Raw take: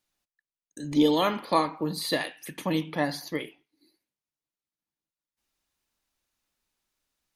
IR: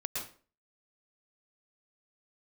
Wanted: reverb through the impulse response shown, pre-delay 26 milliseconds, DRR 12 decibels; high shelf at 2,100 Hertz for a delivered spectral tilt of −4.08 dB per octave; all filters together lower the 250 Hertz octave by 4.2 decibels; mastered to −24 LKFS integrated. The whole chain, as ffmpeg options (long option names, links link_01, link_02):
-filter_complex "[0:a]equalizer=frequency=250:width_type=o:gain=-5.5,highshelf=frequency=2100:gain=-6,asplit=2[link_01][link_02];[1:a]atrim=start_sample=2205,adelay=26[link_03];[link_02][link_03]afir=irnorm=-1:irlink=0,volume=-14.5dB[link_04];[link_01][link_04]amix=inputs=2:normalize=0,volume=6dB"